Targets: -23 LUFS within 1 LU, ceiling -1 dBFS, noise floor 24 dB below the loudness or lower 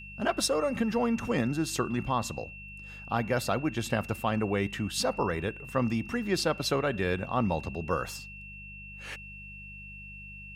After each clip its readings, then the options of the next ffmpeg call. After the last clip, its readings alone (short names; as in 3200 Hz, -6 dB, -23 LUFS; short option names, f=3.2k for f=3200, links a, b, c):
hum 50 Hz; harmonics up to 200 Hz; hum level -46 dBFS; steady tone 2700 Hz; tone level -44 dBFS; loudness -30.0 LUFS; peak -13.0 dBFS; loudness target -23.0 LUFS
-> -af "bandreject=f=50:t=h:w=4,bandreject=f=100:t=h:w=4,bandreject=f=150:t=h:w=4,bandreject=f=200:t=h:w=4"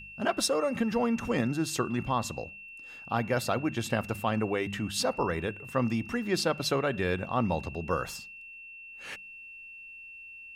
hum none; steady tone 2700 Hz; tone level -44 dBFS
-> -af "bandreject=f=2.7k:w=30"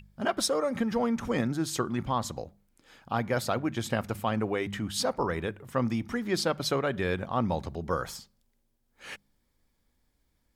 steady tone none; loudness -30.5 LUFS; peak -13.5 dBFS; loudness target -23.0 LUFS
-> -af "volume=7.5dB"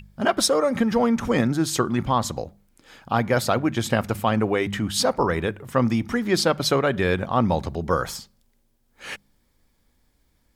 loudness -23.0 LUFS; peak -6.0 dBFS; noise floor -66 dBFS